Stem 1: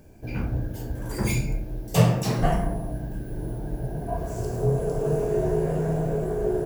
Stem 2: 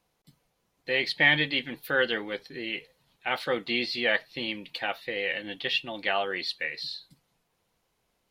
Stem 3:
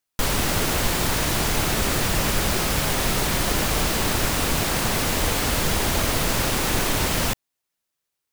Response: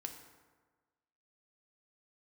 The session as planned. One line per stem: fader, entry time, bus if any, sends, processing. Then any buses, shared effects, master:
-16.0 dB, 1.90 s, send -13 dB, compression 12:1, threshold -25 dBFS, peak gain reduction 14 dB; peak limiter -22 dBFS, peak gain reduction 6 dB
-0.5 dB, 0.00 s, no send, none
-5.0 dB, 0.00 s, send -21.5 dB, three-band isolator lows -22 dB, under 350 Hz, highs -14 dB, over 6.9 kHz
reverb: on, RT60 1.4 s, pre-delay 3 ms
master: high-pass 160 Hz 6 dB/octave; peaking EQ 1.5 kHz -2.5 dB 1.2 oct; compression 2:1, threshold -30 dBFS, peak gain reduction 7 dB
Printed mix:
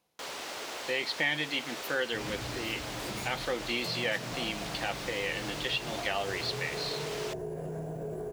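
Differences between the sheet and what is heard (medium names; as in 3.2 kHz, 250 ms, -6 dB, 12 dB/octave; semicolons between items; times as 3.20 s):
stem 1 -16.0 dB -> -6.5 dB; stem 3 -5.0 dB -> -12.5 dB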